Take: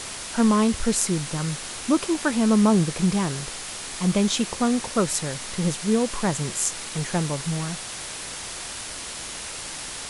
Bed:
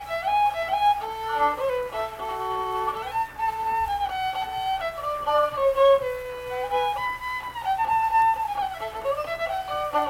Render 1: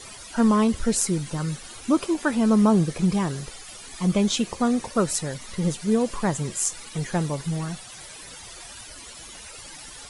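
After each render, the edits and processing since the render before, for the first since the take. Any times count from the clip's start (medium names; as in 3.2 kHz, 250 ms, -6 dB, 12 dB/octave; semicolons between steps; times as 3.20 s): noise reduction 14 dB, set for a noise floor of -35 dBFS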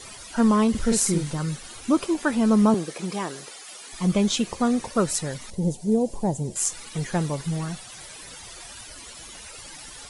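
0.70–1.33 s: doubling 48 ms -3.5 dB; 2.74–3.93 s: high-pass 330 Hz; 5.50–6.56 s: FFT filter 850 Hz 0 dB, 1.2 kHz -22 dB, 3.1 kHz -14 dB, 7.2 kHz -5 dB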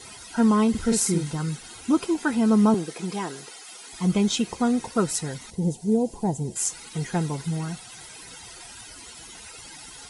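comb of notches 580 Hz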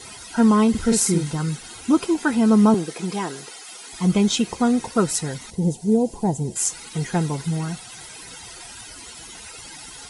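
trim +3.5 dB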